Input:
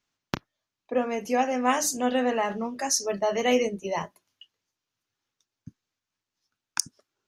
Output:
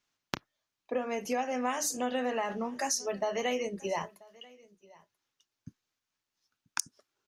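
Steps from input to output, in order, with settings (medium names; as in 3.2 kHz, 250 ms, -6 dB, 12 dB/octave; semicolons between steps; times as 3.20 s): bass shelf 350 Hz -4.5 dB; compression 6:1, threshold -28 dBFS, peak gain reduction 9.5 dB; delay 986 ms -24 dB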